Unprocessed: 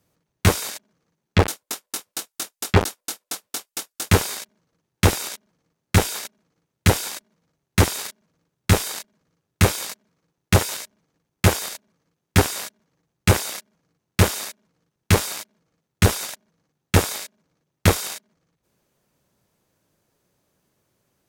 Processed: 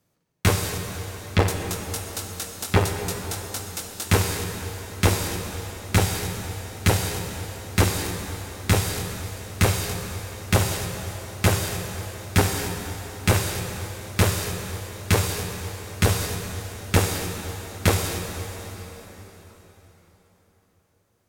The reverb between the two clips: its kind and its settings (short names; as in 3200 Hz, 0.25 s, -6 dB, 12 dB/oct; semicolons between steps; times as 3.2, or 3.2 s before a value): plate-style reverb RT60 4.3 s, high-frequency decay 0.85×, DRR 3 dB; gain -3 dB